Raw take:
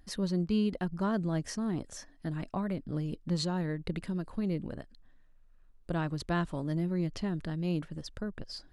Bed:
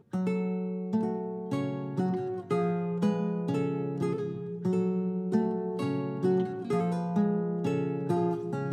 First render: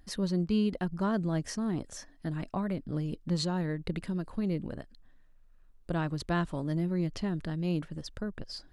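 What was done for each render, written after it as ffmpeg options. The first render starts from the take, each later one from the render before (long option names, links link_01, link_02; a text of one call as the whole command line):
ffmpeg -i in.wav -af "volume=1dB" out.wav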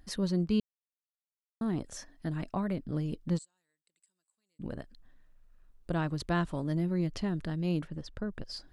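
ffmpeg -i in.wav -filter_complex "[0:a]asplit=3[link_01][link_02][link_03];[link_01]afade=type=out:start_time=3.37:duration=0.02[link_04];[link_02]bandpass=frequency=7900:width_type=q:width=16,afade=type=in:start_time=3.37:duration=0.02,afade=type=out:start_time=4.59:duration=0.02[link_05];[link_03]afade=type=in:start_time=4.59:duration=0.02[link_06];[link_04][link_05][link_06]amix=inputs=3:normalize=0,asettb=1/sr,asplit=3[link_07][link_08][link_09];[link_07]atrim=end=7.874[link_10];[link_08]atrim=start=7.87:end=8.31,asetpts=PTS-STARTPTS,afade=type=in:duration=0.004:curve=qsin,afade=type=out:start_time=0.436:duration=0.004:curve=qsin,aemphasis=mode=reproduction:type=50kf[link_11];[link_09]atrim=start=8.306[link_12];[link_10][link_11]acrossfade=duration=0.004:curve1=hsin:curve2=qsin[link_13];[link_13][link_12]acrossfade=duration=0.004:curve1=qsin:curve2=hsin,asplit=3[link_14][link_15][link_16];[link_14]atrim=end=0.6,asetpts=PTS-STARTPTS,afade=type=out:start_time=0.596:duration=0.004:curve=hsin[link_17];[link_15]atrim=start=0.6:end=1.61,asetpts=PTS-STARTPTS,volume=0[link_18];[link_16]atrim=start=1.61,asetpts=PTS-STARTPTS,afade=type=in:duration=0.004:curve=hsin[link_19];[link_17][link_18][link_19]concat=n=3:v=0:a=1" out.wav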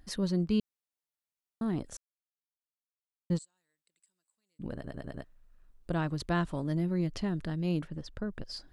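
ffmpeg -i in.wav -filter_complex "[0:a]asplit=8[link_01][link_02][link_03][link_04][link_05][link_06][link_07][link_08];[link_01]atrim=end=1.97,asetpts=PTS-STARTPTS,afade=type=out:start_time=1.966:duration=0.004:curve=hsin[link_09];[link_02]atrim=start=1.97:end=3.3,asetpts=PTS-STARTPTS,volume=0[link_10];[link_03]atrim=start=3.3:end=4.842,asetpts=PTS-STARTPTS,afade=type=in:duration=0.004:curve=hsin[link_11];[link_04]atrim=start=4.738:end=4.842[link_12];[link_05]atrim=start=4.738:end=4.842[link_13];[link_06]atrim=start=4.738:end=4.842[link_14];[link_07]atrim=start=4.738:end=4.842[link_15];[link_08]atrim=start=5.238[link_16];[link_09][link_10][link_11]concat=n=3:v=0:a=1[link_17];[link_17][link_12]acrossfade=duration=0.004:curve1=hsin:curve2=hsin[link_18];[link_18][link_13]acrossfade=duration=0.004:curve1=hsin:curve2=hsin[link_19];[link_19][link_14]acrossfade=duration=0.004:curve1=hsin:curve2=hsin[link_20];[link_20][link_15]acrossfade=duration=0.004:curve1=hsin:curve2=hsin[link_21];[link_21][link_16]acrossfade=duration=0.004:curve1=hsin:curve2=hsin" out.wav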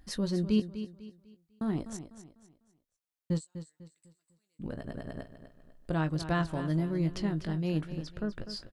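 ffmpeg -i in.wav -filter_complex "[0:a]asplit=2[link_01][link_02];[link_02]adelay=19,volume=-10dB[link_03];[link_01][link_03]amix=inputs=2:normalize=0,aecho=1:1:249|498|747|996:0.266|0.0905|0.0308|0.0105" out.wav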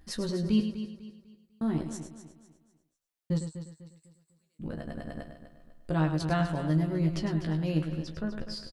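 ffmpeg -i in.wav -filter_complex "[0:a]asplit=2[link_01][link_02];[link_02]adelay=13,volume=-5dB[link_03];[link_01][link_03]amix=inputs=2:normalize=0,aecho=1:1:104:0.355" out.wav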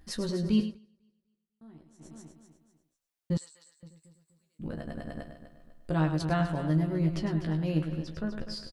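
ffmpeg -i in.wav -filter_complex "[0:a]asettb=1/sr,asplit=3[link_01][link_02][link_03];[link_01]atrim=end=3.374[link_04];[link_02]atrim=start=3.37:end=3.83,asetpts=PTS-STARTPTS,afade=type=in:duration=0.004:curve=qsin,afade=type=out:start_time=0.456:duration=0.004:curve=qsin,highpass=1400[link_05];[link_03]atrim=start=3.826[link_06];[link_04][link_05]acrossfade=duration=0.004:curve1=hsin:curve2=qsin[link_07];[link_07][link_06]acrossfade=duration=0.004:curve1=qsin:curve2=hsin,asettb=1/sr,asplit=3[link_08][link_09][link_10];[link_08]atrim=end=6.224[link_11];[link_09]atrim=start=6.22:end=8.12,asetpts=PTS-STARTPTS,afade=type=in:duration=0.004:curve=qsin,afade=type=out:start_time=1.896:duration=0.004:curve=qsin,equalizer=frequency=6400:width_type=o:width=1.9:gain=-3.5[link_12];[link_10]atrim=start=8.116[link_13];[link_11][link_12]acrossfade=duration=0.004:curve1=hsin:curve2=qsin[link_14];[link_14][link_13]acrossfade=duration=0.004:curve1=qsin:curve2=hsin,asplit=3[link_15][link_16][link_17];[link_15]atrim=end=0.79,asetpts=PTS-STARTPTS,afade=type=out:start_time=0.63:duration=0.16:silence=0.0749894[link_18];[link_16]atrim=start=0.79:end=1.98,asetpts=PTS-STARTPTS,volume=-22.5dB[link_19];[link_17]atrim=start=1.98,asetpts=PTS-STARTPTS,afade=type=in:duration=0.16:silence=0.0749894[link_20];[link_18][link_19][link_20]concat=n=3:v=0:a=1" out.wav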